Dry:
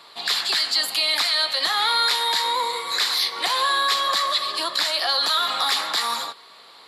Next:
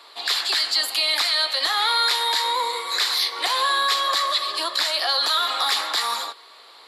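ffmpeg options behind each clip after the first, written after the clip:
-af "highpass=f=290:w=0.5412,highpass=f=290:w=1.3066"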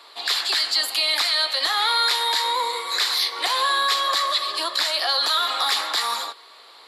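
-af anull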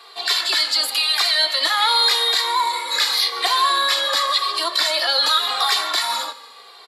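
-filter_complex "[0:a]aecho=1:1:154|308|462|616:0.0944|0.0463|0.0227|0.0111,asplit=2[a][b];[b]adelay=2.1,afreqshift=-0.9[c];[a][c]amix=inputs=2:normalize=1,volume=6dB"

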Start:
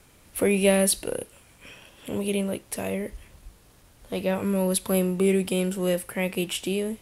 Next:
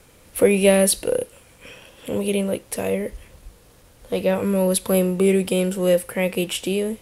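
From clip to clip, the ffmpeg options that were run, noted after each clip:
-af "equalizer=f=500:w=5.8:g=8.5,volume=3.5dB"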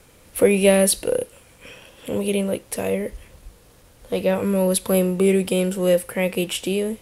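-af anull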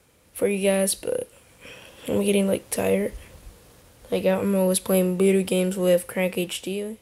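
-af "highpass=47,dynaudnorm=f=150:g=9:m=11dB,volume=-7.5dB"

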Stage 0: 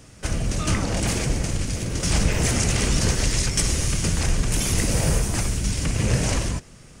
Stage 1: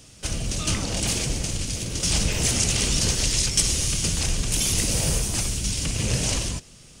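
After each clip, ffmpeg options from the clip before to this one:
-af "highshelf=f=2.4k:t=q:w=1.5:g=6.5,volume=-4dB"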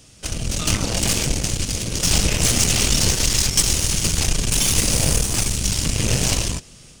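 -af "dynaudnorm=f=300:g=3:m=4dB,aeval=exprs='0.708*(cos(1*acos(clip(val(0)/0.708,-1,1)))-cos(1*PI/2))+0.0708*(cos(8*acos(clip(val(0)/0.708,-1,1)))-cos(8*PI/2))':c=same"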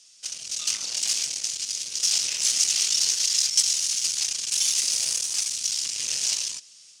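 -af "bandpass=f=5.5k:t=q:w=1.5:csg=0"

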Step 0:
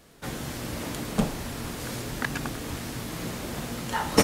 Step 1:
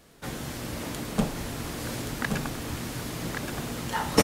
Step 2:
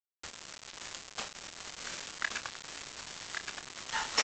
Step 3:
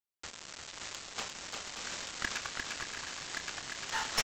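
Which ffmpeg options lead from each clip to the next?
-af "aecho=1:1:1124:0.531,volume=-1dB"
-filter_complex "[0:a]highpass=1.3k,aresample=16000,acrusher=bits=5:mix=0:aa=0.000001,aresample=44100,asplit=2[a][b];[b]adelay=28,volume=-11dB[c];[a][c]amix=inputs=2:normalize=0,volume=-1dB"
-filter_complex "[0:a]aeval=exprs='clip(val(0),-1,0.0335)':c=same,asplit=2[a][b];[b]aecho=0:1:350|577.5|725.4|821.5|884:0.631|0.398|0.251|0.158|0.1[c];[a][c]amix=inputs=2:normalize=0"

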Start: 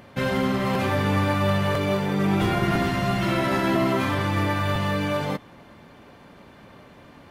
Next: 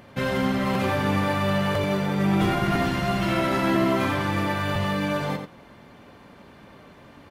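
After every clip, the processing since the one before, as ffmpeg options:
-filter_complex "[0:a]asplit=2[a][b];[b]adelay=87.46,volume=-7dB,highshelf=f=4k:g=-1.97[c];[a][c]amix=inputs=2:normalize=0,volume=-1dB"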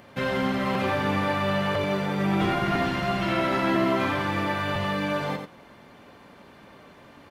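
-filter_complex "[0:a]lowshelf=f=200:g=-6,acrossover=split=5000[a][b];[b]acompressor=threshold=-52dB:ratio=4:attack=1:release=60[c];[a][c]amix=inputs=2:normalize=0"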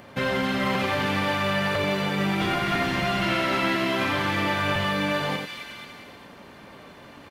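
-filter_complex "[0:a]acrossover=split=1600[a][b];[a]alimiter=limit=-21.5dB:level=0:latency=1:release=230[c];[b]aecho=1:1:270|486|658.8|797|907.6:0.631|0.398|0.251|0.158|0.1[d];[c][d]amix=inputs=2:normalize=0,volume=3.5dB"

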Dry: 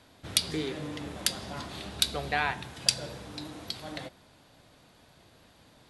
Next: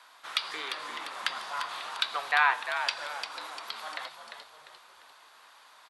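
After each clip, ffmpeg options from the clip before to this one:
-filter_complex "[0:a]highpass=f=1.1k:t=q:w=2.7,asplit=5[a][b][c][d][e];[b]adelay=348,afreqshift=-77,volume=-9dB[f];[c]adelay=696,afreqshift=-154,volume=-17.2dB[g];[d]adelay=1044,afreqshift=-231,volume=-25.4dB[h];[e]adelay=1392,afreqshift=-308,volume=-33.5dB[i];[a][f][g][h][i]amix=inputs=5:normalize=0,acrossover=split=3600[j][k];[k]acompressor=threshold=-48dB:ratio=4:attack=1:release=60[l];[j][l]amix=inputs=2:normalize=0,volume=2.5dB"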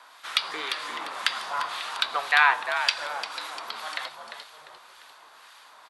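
-filter_complex "[0:a]acrossover=split=1400[a][b];[a]aeval=exprs='val(0)*(1-0.5/2+0.5/2*cos(2*PI*1.9*n/s))':c=same[c];[b]aeval=exprs='val(0)*(1-0.5/2-0.5/2*cos(2*PI*1.9*n/s))':c=same[d];[c][d]amix=inputs=2:normalize=0,volume=7dB"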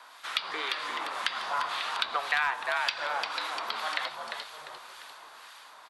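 -filter_complex "[0:a]dynaudnorm=f=410:g=7:m=7dB,volume=7.5dB,asoftclip=hard,volume=-7.5dB,acrossover=split=310|5000[a][b][c];[a]acompressor=threshold=-57dB:ratio=4[d];[b]acompressor=threshold=-26dB:ratio=4[e];[c]acompressor=threshold=-51dB:ratio=4[f];[d][e][f]amix=inputs=3:normalize=0"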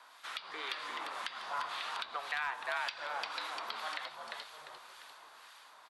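-af "alimiter=limit=-16dB:level=0:latency=1:release=339,volume=-6.5dB"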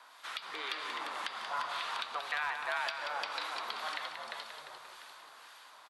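-af "aecho=1:1:183:0.422,volume=1dB"

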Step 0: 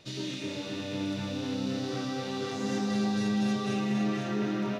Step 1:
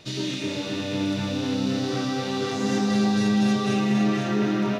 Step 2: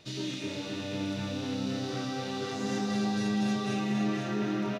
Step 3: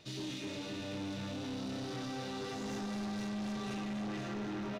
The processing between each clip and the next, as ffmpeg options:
-af "bandreject=f=540:w=18,volume=7dB"
-filter_complex "[0:a]asplit=2[a][b];[b]adelay=32,volume=-13.5dB[c];[a][c]amix=inputs=2:normalize=0,volume=-7dB"
-af "asoftclip=type=tanh:threshold=-33.5dB,volume=-2.5dB"

